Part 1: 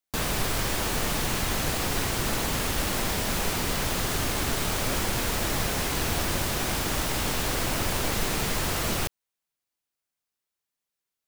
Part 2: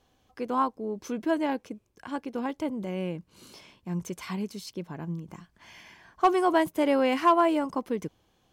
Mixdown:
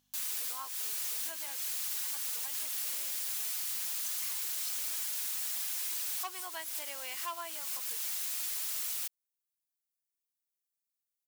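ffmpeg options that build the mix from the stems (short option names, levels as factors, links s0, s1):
-filter_complex "[0:a]highpass=f=670:p=1,aecho=1:1:4.8:0.48,volume=0.501[s0];[1:a]equalizer=f=190:w=0.66:g=-15,aeval=exprs='val(0)+0.00794*(sin(2*PI*50*n/s)+sin(2*PI*2*50*n/s)/2+sin(2*PI*3*50*n/s)/3+sin(2*PI*4*50*n/s)/4+sin(2*PI*5*50*n/s)/5)':c=same,volume=1,asplit=2[s1][s2];[s2]apad=whole_len=497491[s3];[s0][s3]sidechaincompress=threshold=0.0282:ratio=8:attack=8.4:release=217[s4];[s4][s1]amix=inputs=2:normalize=0,aderivative"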